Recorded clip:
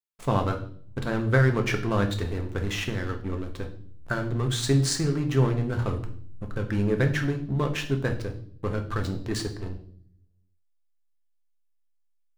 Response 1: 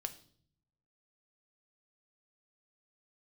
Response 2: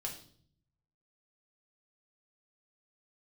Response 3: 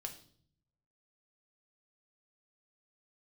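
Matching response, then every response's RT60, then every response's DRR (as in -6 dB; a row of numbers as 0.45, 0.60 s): 3; 0.55, 0.55, 0.55 s; 8.0, -0.5, 4.0 dB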